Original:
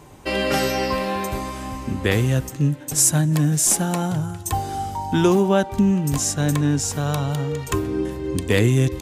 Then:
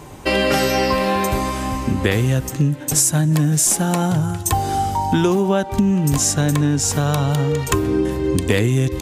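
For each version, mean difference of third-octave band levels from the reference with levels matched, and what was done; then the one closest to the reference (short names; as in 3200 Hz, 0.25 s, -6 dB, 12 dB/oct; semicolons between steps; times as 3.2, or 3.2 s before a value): 2.5 dB: compressor, threshold -21 dBFS, peak gain reduction 8.5 dB; gain +7.5 dB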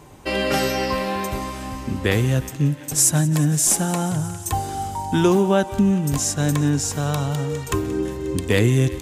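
1.0 dB: thinning echo 0.179 s, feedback 81%, high-pass 600 Hz, level -18.5 dB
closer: second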